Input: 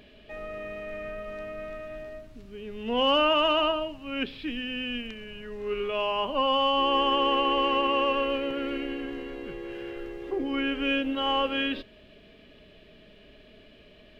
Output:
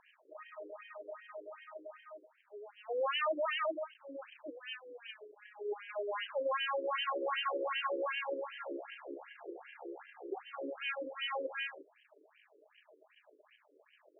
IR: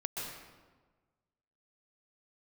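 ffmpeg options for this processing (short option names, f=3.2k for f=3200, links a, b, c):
-filter_complex "[0:a]asettb=1/sr,asplit=3[a][b][c];[a]atrim=end=2.044[d];[b]atrim=start=2.04:end=3.82,asetpts=PTS-STARTPTS,afade=t=in:d=0.004:c=qsin,afade=t=out:st=1.776:d=0.004:c=qsin,highpass=140,lowpass=3.3k[e];[c]atrim=start=3.816[f];[d][e]acrossfade=d=0.004:c1=hsin:c2=qsin[g];[g][f]acrossfade=d=0.004:c1=qsin:c2=hsin,aeval=exprs='max(val(0),0)':c=same,afftfilt=real='re*between(b*sr/1024,380*pow(2300/380,0.5+0.5*sin(2*PI*2.6*pts/sr))/1.41,380*pow(2300/380,0.5+0.5*sin(2*PI*2.6*pts/sr))*1.41)':imag='im*between(b*sr/1024,380*pow(2300/380,0.5+0.5*sin(2*PI*2.6*pts/sr))/1.41,380*pow(2300/380,0.5+0.5*sin(2*PI*2.6*pts/sr))*1.41)':win_size=1024:overlap=0.75"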